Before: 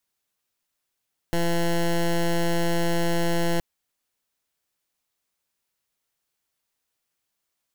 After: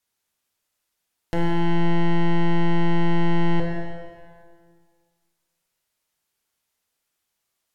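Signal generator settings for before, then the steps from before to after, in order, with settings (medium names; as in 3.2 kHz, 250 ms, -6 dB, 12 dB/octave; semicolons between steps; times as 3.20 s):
pulse 170 Hz, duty 14% -22 dBFS 2.27 s
low-pass that closes with the level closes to 2.1 kHz; plate-style reverb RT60 1.9 s, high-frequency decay 0.9×, DRR 0 dB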